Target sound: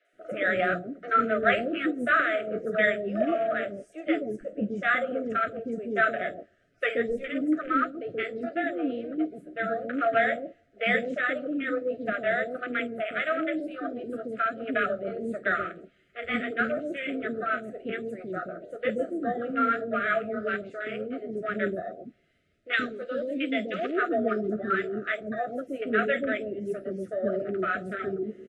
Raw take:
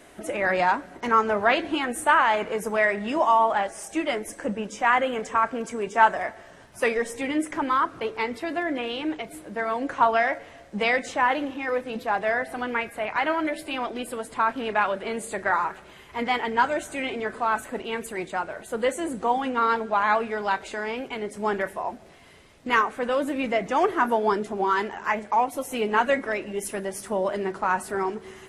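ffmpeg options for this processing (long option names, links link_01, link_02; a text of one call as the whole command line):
ffmpeg -i in.wav -filter_complex "[0:a]aemphasis=mode=reproduction:type=50fm,afwtdn=0.0251,asettb=1/sr,asplit=3[link_01][link_02][link_03];[link_01]atrim=end=22.734[link_04];[link_02]atrim=start=22.73:end=23.96,asetpts=PTS-STARTPTS,afade=type=in:duration=0.004:curve=qsin,afade=type=out:start_time=1.226:duration=0.004:curve=qsin,equalizer=frequency=125:width_type=o:width=1:gain=-11,equalizer=frequency=1000:width_type=o:width=1:gain=-11,equalizer=frequency=4000:width_type=o:width=1:gain=10[link_05];[link_03]atrim=start=23.956[link_06];[link_04][link_05]acrossfade=duration=0.004:curve1=hsin:curve2=qsin[link_07];[link_07][link_06]acrossfade=duration=0.004:curve1=qsin:curve2=hsin,flanger=delay=6:depth=5.5:regen=-54:speed=1.5:shape=triangular,asuperstop=centerf=940:order=20:qfactor=1.9,acrossover=split=500|4800[link_08][link_09][link_10];[link_10]adelay=50[link_11];[link_08]adelay=130[link_12];[link_12][link_09][link_11]amix=inputs=3:normalize=0,volume=4.5dB" out.wav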